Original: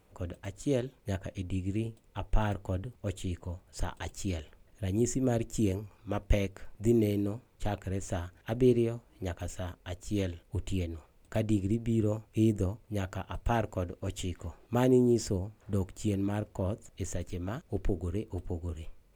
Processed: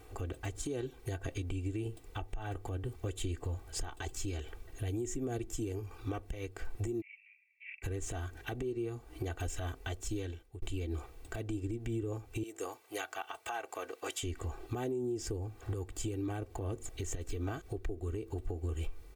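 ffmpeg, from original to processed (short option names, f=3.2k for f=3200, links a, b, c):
-filter_complex "[0:a]asplit=3[a][b][c];[a]afade=t=out:st=7:d=0.02[d];[b]asuperpass=centerf=2300:order=8:qfactor=3.6,afade=t=in:st=7:d=0.02,afade=t=out:st=7.82:d=0.02[e];[c]afade=t=in:st=7.82:d=0.02[f];[d][e][f]amix=inputs=3:normalize=0,asettb=1/sr,asplit=3[g][h][i];[g]atrim=end=12.434[j];[h]atrim=start=12.43:end=14.23,asetpts=PTS-STARTPTS,afade=t=in:d=0.004:c=qsin,afade=t=out:st=1.796:d=0.004:c=qsin,highpass=740[k];[i]atrim=start=14.226[l];[j][k]acrossfade=d=0.004:c1=hsin:c2=qsin[m];[m][l]acrossfade=d=0.004:c1=qsin:c2=hsin,asplit=2[n][o];[n]atrim=end=10.62,asetpts=PTS-STARTPTS,afade=t=out:st=9.83:d=0.79[p];[o]atrim=start=10.62,asetpts=PTS-STARTPTS,afade=t=in:d=0.004:c=hsin[q];[p][q]concat=n=2:v=0:a=1,aecho=1:1:2.6:0.93,acompressor=threshold=-36dB:ratio=10,alimiter=level_in=11dB:limit=-24dB:level=0:latency=1:release=147,volume=-11dB,volume=7dB"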